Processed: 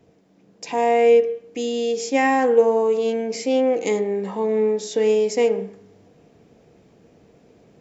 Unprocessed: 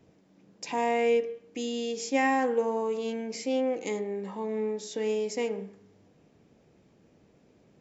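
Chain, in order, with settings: small resonant body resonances 460/690 Hz, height 6 dB; vocal rider within 3 dB 2 s; gain +6 dB

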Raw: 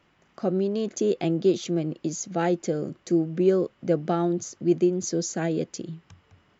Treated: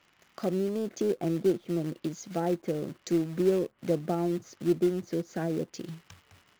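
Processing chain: treble ducked by the level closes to 970 Hz, closed at -22 dBFS; in parallel at -5.5 dB: companded quantiser 4-bit; on the sum: mismatched tape noise reduction encoder only; gain -8 dB

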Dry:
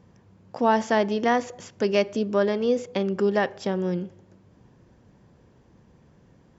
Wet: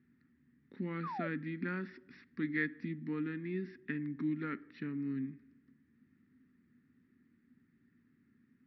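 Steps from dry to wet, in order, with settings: double band-pass 880 Hz, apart 2.9 oct; varispeed -24%; painted sound fall, 1.03–1.28, 540–1300 Hz -41 dBFS

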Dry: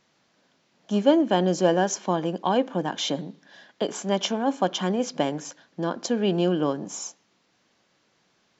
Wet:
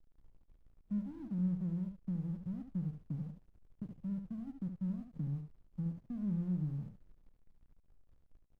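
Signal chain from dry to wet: inverse Chebyshev low-pass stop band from 690 Hz, stop band 80 dB; in parallel at +2.5 dB: compressor, threshold -59 dBFS, peak gain reduction 16.5 dB; on the sum: transient shaper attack +2 dB, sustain -3 dB; added noise brown -65 dBFS; backlash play -55.5 dBFS; on a send: echo 72 ms -7.5 dB; on the sum: gain +6.5 dB

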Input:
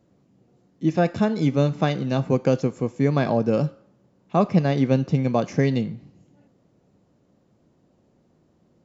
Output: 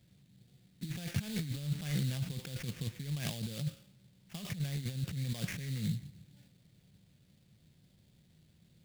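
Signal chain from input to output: negative-ratio compressor -28 dBFS, ratio -1; sample-rate reducer 4100 Hz, jitter 20%; band shelf 560 Hz -15 dB 2.8 oct; gain -5 dB

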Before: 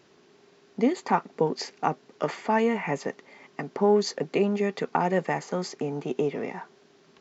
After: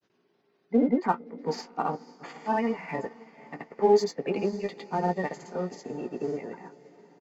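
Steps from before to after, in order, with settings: spectral gate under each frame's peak -25 dB strong; grains, grains 20/s, pitch spread up and down by 0 st; in parallel at -8.5 dB: soft clip -35 dBFS, distortion -3 dB; on the sum: doubler 17 ms -8 dB; on a send: diffused feedback echo 0.506 s, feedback 61%, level -14 dB; on the sum: upward expander 1.5:1, over -44 dBFS

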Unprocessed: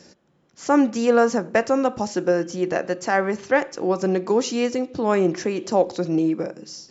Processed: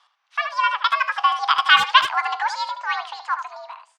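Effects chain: Doppler pass-by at 3, 21 m/s, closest 16 m; mistuned SSB +83 Hz 490–3300 Hz; speakerphone echo 0.13 s, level -8 dB; speed mistake 45 rpm record played at 78 rpm; gain +8.5 dB

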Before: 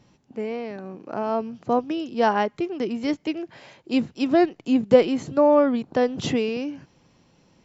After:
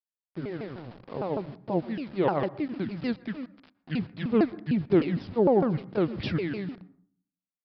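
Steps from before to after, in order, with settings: repeated pitch sweeps -9.5 st, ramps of 0.152 s; sample gate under -39.5 dBFS; on a send at -20 dB: reverb RT60 0.55 s, pre-delay 0.112 s; on the sum: downsampling 11025 Hz; gain -4 dB

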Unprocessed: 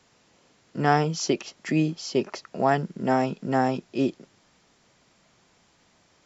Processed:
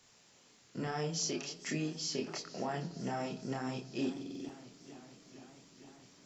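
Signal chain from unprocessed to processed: high shelf 3700 Hz +11 dB; in parallel at -1.5 dB: compressor, threshold -34 dBFS, peak gain reduction 19 dB; on the sum: limiter -14.5 dBFS, peak gain reduction 10 dB; chorus voices 2, 0.41 Hz, delay 28 ms, depth 4.8 ms; on a send at -13 dB: reverb RT60 1.1 s, pre-delay 5 ms; on the sum: stuck buffer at 4.12, samples 2048, times 7; warbling echo 0.458 s, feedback 78%, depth 113 cents, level -18 dB; gain -8.5 dB

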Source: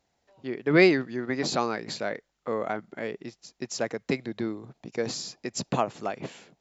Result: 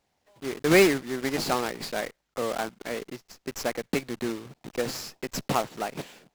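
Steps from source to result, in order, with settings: block floating point 3-bit; speed mistake 24 fps film run at 25 fps; running maximum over 3 samples

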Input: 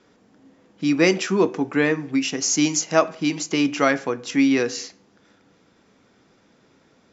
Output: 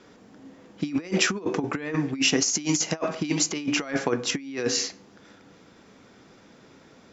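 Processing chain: negative-ratio compressor -25 dBFS, ratio -0.5

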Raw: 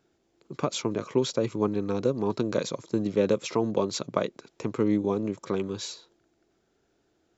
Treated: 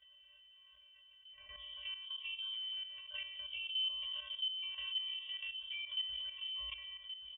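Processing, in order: whole clip reversed; HPF 110 Hz; bell 1100 Hz -5.5 dB 2.7 oct; metallic resonator 340 Hz, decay 0.72 s, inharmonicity 0.008; thinning echo 0.133 s, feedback 38%, high-pass 1000 Hz, level -12.5 dB; level quantiser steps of 14 dB; air absorption 480 m; inverted band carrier 3400 Hz; on a send: echo 1.124 s -17.5 dB; on the sum: fast leveller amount 50%; gain +7.5 dB

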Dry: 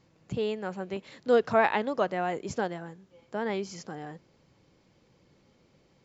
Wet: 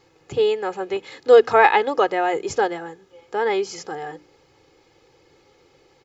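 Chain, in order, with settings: tone controls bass -8 dB, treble -1 dB; notches 60/120/180/240/300 Hz; comb 2.4 ms, depth 67%; gain +8.5 dB

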